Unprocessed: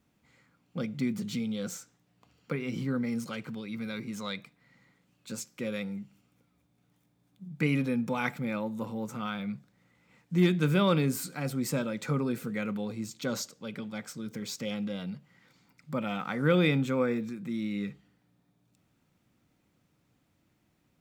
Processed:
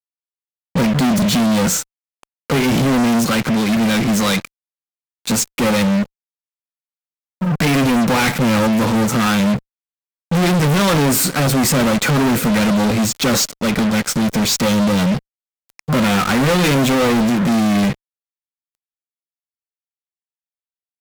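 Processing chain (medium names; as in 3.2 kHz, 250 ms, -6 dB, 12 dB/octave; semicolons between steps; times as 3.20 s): fuzz box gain 49 dB, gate -49 dBFS; upward expansion 1.5:1, over -29 dBFS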